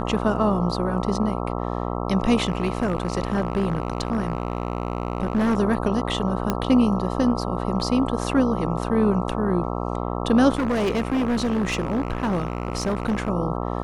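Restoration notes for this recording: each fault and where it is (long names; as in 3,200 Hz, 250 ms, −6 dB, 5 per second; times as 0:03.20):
mains buzz 60 Hz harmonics 22 −27 dBFS
0:02.45–0:05.57: clipping −17 dBFS
0:06.50: click −8 dBFS
0:10.55–0:13.30: clipping −19 dBFS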